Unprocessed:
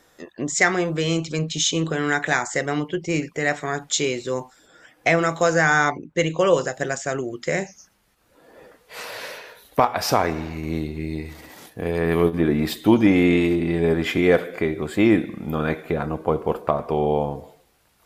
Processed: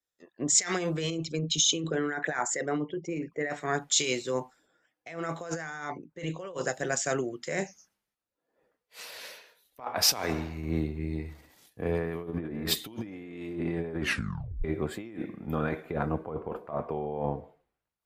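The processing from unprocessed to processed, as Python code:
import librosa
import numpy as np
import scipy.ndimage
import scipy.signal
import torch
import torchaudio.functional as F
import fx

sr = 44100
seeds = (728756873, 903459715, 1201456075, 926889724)

y = fx.envelope_sharpen(x, sr, power=1.5, at=(1.1, 3.5))
y = fx.echo_throw(y, sr, start_s=11.24, length_s=0.92, ms=580, feedback_pct=60, wet_db=-10.0)
y = fx.edit(y, sr, fx.tape_stop(start_s=13.99, length_s=0.65), tone=tone)
y = fx.over_compress(y, sr, threshold_db=-24.0, ratio=-1.0)
y = fx.band_widen(y, sr, depth_pct=100)
y = F.gain(torch.from_numpy(y), -8.0).numpy()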